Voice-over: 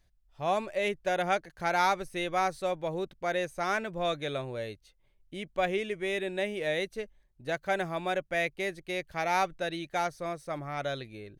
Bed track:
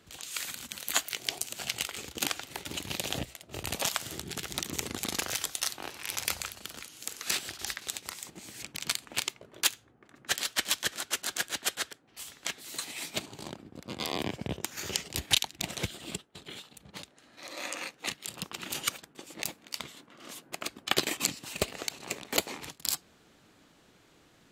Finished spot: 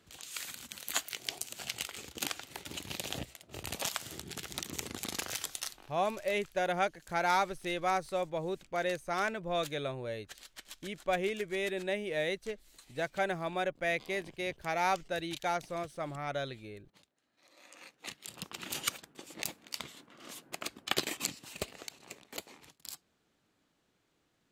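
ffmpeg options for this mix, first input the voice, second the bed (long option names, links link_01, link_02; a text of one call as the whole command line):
ffmpeg -i stem1.wav -i stem2.wav -filter_complex "[0:a]adelay=5500,volume=-2.5dB[link_01];[1:a]volume=13dB,afade=type=out:start_time=5.54:duration=0.33:silence=0.16788,afade=type=in:start_time=17.68:duration=1.04:silence=0.125893,afade=type=out:start_time=20.51:duration=1.76:silence=0.251189[link_02];[link_01][link_02]amix=inputs=2:normalize=0" out.wav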